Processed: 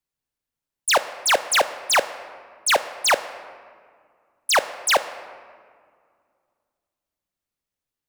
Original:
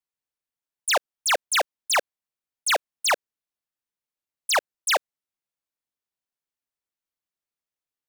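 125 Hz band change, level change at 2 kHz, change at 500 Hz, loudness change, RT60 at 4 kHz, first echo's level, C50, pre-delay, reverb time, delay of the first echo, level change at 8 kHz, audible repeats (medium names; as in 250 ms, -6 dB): no reading, +3.5 dB, +5.0 dB, +3.5 dB, 1.1 s, no echo, 14.0 dB, 4 ms, 2.0 s, no echo, +3.0 dB, no echo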